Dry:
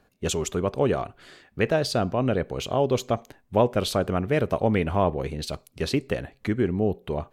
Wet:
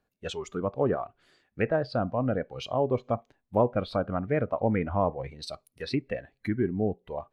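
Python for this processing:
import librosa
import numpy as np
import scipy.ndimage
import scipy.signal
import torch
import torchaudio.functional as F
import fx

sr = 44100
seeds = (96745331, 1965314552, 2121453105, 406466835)

y = fx.env_lowpass_down(x, sr, base_hz=2200.0, full_db=-20.5)
y = fx.noise_reduce_blind(y, sr, reduce_db=12)
y = F.gain(torch.from_numpy(y), -3.0).numpy()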